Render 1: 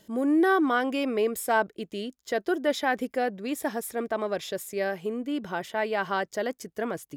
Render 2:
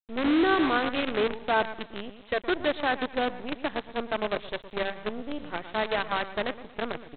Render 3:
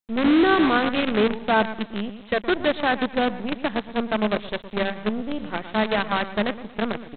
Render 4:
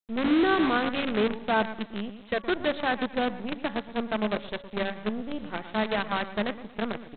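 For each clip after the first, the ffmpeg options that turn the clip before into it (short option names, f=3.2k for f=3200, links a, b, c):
-af "aecho=1:1:117|234|351|468:0.316|0.12|0.0457|0.0174,aresample=8000,acrusher=bits=5:dc=4:mix=0:aa=0.000001,aresample=44100,volume=-1.5dB"
-af "equalizer=f=210:w=3.8:g=10,volume=4.5dB"
-af "bandreject=f=282.7:t=h:w=4,bandreject=f=565.4:t=h:w=4,bandreject=f=848.1:t=h:w=4,bandreject=f=1.1308k:t=h:w=4,bandreject=f=1.4135k:t=h:w=4,bandreject=f=1.6962k:t=h:w=4,bandreject=f=1.9789k:t=h:w=4,volume=-5dB"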